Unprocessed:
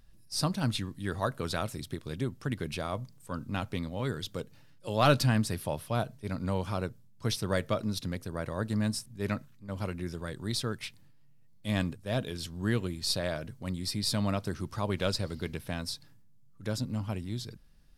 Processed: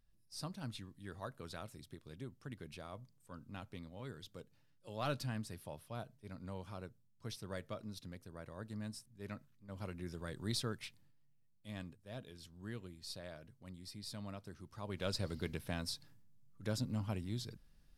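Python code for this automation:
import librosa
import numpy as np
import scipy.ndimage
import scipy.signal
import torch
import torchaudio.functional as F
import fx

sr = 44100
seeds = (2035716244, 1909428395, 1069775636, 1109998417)

y = fx.gain(x, sr, db=fx.line((9.26, -15.0), (10.5, -5.0), (11.73, -17.0), (14.67, -17.0), (15.26, -5.0)))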